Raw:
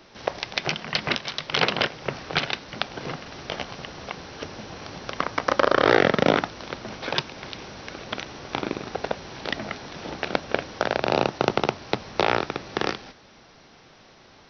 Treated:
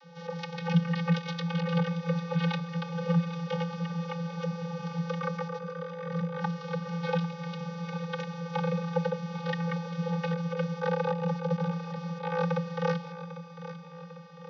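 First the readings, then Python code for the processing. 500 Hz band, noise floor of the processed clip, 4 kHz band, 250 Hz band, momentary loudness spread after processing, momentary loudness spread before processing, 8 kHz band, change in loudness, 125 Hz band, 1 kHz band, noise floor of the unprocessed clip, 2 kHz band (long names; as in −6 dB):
−7.0 dB, −45 dBFS, −14.5 dB, +0.5 dB, 9 LU, 16 LU, can't be measured, −5.5 dB, +7.0 dB, −8.5 dB, −52 dBFS, −11.5 dB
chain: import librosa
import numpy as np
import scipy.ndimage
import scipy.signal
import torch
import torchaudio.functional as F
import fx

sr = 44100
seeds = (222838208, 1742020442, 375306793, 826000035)

y = fx.over_compress(x, sr, threshold_db=-26.0, ratio=-0.5)
y = fx.vocoder(y, sr, bands=32, carrier='square', carrier_hz=169.0)
y = fx.echo_feedback(y, sr, ms=798, feedback_pct=54, wet_db=-13)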